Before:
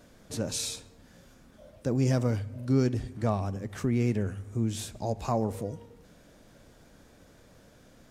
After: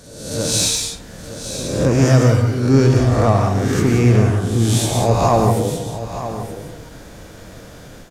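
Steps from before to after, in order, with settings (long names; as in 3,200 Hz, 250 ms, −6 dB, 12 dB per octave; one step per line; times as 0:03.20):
peak hold with a rise ahead of every peak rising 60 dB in 0.84 s
parametric band 230 Hz −4 dB 0.22 octaves
in parallel at −5 dB: soft clipping −25.5 dBFS, distortion −10 dB
on the sum: echo ahead of the sound 273 ms −17 dB
reverb whose tail is shaped and stops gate 210 ms rising, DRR 3.5 dB
automatic gain control gain up to 9 dB
on a send: single-tap delay 921 ms −11.5 dB
on the sum: level +1 dB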